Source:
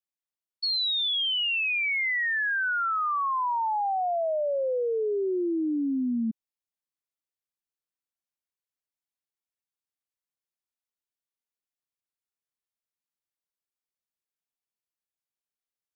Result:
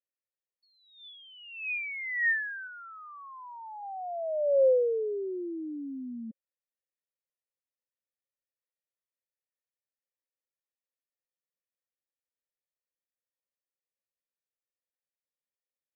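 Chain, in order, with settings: cascade formant filter e; 2.67–3.83 s: distance through air 390 m; trim +6.5 dB

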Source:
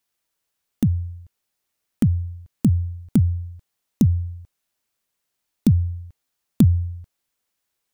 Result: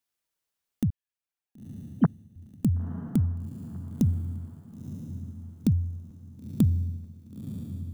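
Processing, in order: 0.90–2.36 s: formants replaced by sine waves; echo that smears into a reverb 984 ms, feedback 41%, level -10.5 dB; trim -7 dB

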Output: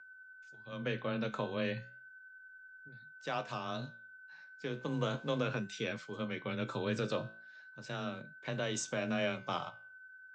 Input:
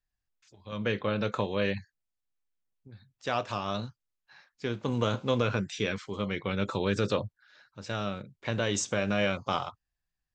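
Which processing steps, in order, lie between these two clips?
whistle 1.5 kHz -45 dBFS; frequency shift +18 Hz; flange 0.35 Hz, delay 9.8 ms, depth 9.6 ms, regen +76%; trim -2.5 dB

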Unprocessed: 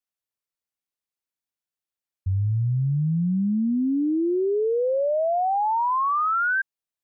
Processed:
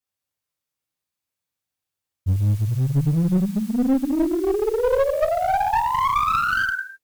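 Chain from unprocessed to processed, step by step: peaking EQ 110 Hz +8.5 dB 0.62 oct; peak limiter -22 dBFS, peak gain reduction 11 dB; modulation noise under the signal 27 dB; gated-style reverb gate 370 ms falling, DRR -4.5 dB; one-sided clip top -19.5 dBFS

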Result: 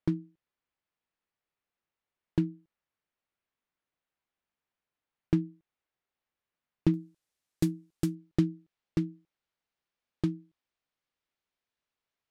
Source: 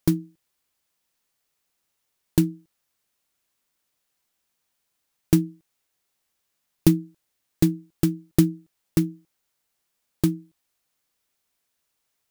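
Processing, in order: low-pass 2.6 kHz 12 dB/octave, from 6.94 s 11 kHz, from 8.15 s 3.7 kHz; trim -8 dB

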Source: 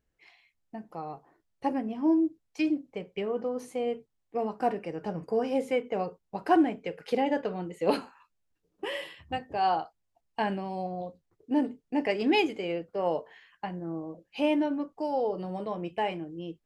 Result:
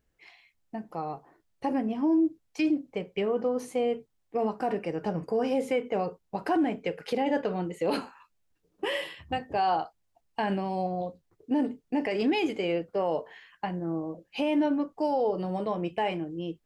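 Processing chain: peak limiter -22.5 dBFS, peak gain reduction 10 dB; trim +4 dB

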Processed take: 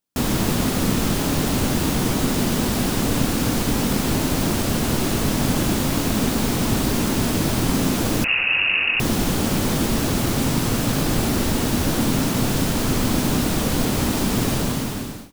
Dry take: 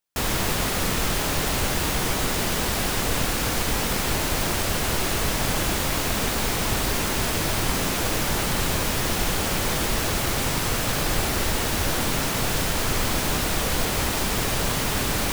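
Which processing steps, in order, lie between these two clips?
fade out at the end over 0.80 s; ten-band graphic EQ 125 Hz +5 dB, 250 Hz +11 dB, 2 kHz -3 dB; 8.24–9.00 s: frequency inversion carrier 2.8 kHz

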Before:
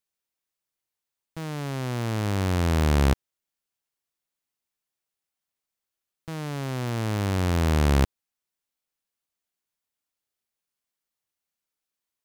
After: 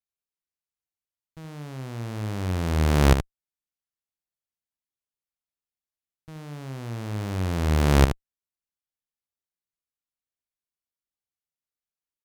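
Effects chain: bass shelf 150 Hz +10 dB; Chebyshev shaper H 3 -9 dB, 5 -25 dB, 6 -35 dB, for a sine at -5 dBFS; delay 75 ms -9 dB; vibrato 1.4 Hz 34 cents; trim +1.5 dB

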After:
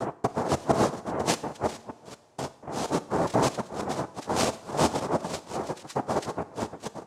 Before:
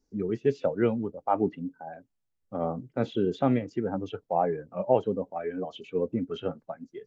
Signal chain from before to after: time reversed locally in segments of 238 ms; noise-vocoded speech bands 2; two-slope reverb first 0.6 s, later 3.8 s, from -18 dB, DRR 13 dB

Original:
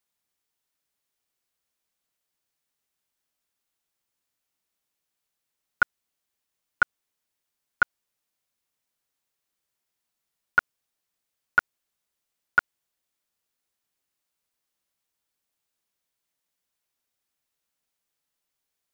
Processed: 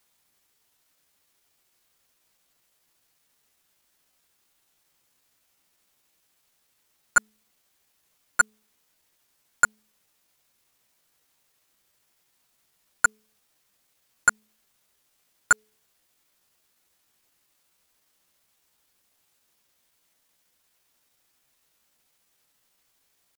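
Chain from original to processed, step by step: in parallel at -7.5 dB: sine folder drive 12 dB, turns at -9 dBFS; on the sum: tempo 0.81×; de-hum 214.9 Hz, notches 2; trim +2 dB

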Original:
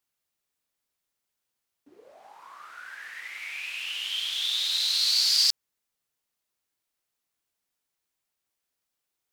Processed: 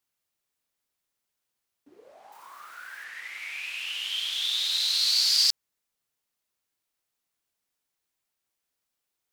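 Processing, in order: 2.32–3.04 s: zero-crossing glitches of -48 dBFS

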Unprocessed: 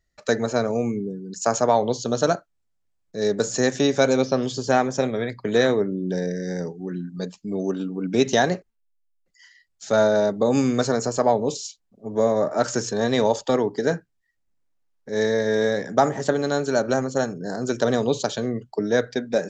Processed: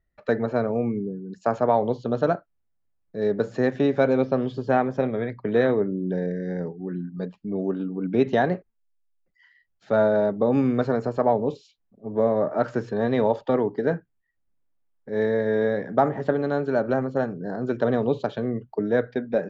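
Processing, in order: distance through air 490 m

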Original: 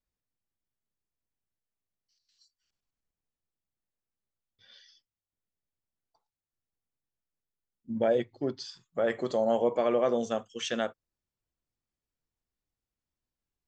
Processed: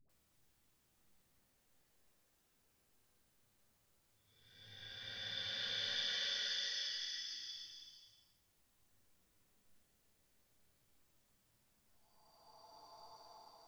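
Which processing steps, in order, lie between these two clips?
Paulstretch 5×, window 0.50 s, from 3.55 s; phase dispersion highs, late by 95 ms, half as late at 480 Hz; trim +17.5 dB

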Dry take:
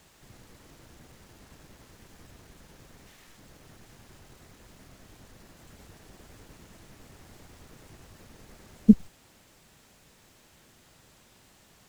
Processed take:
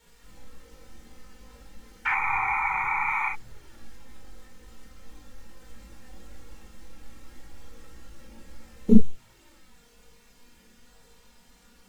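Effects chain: in parallel at -3.5 dB: Schmitt trigger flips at -14.5 dBFS; on the sum: chorus voices 6, 0.22 Hz, delay 19 ms, depth 2.3 ms; painted sound noise, 2.05–3.29 s, 760–2500 Hz -26 dBFS; touch-sensitive flanger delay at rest 4.4 ms, full sweep at -24.5 dBFS; reverberation, pre-delay 17 ms, DRR 1 dB; trim +1.5 dB

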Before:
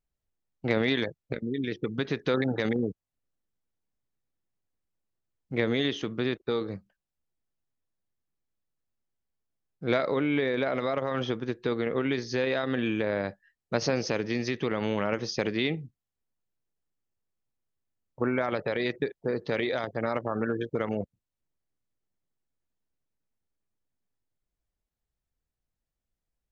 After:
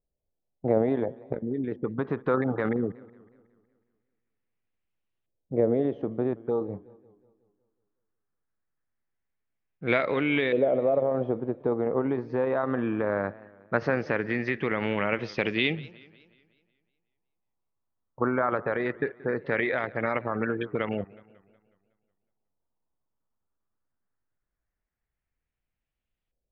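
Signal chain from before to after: LFO low-pass saw up 0.19 Hz 540–3000 Hz; 6.33–6.74 s: touch-sensitive phaser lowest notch 490 Hz, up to 2.3 kHz, full sweep at -22 dBFS; modulated delay 184 ms, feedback 50%, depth 167 cents, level -21.5 dB

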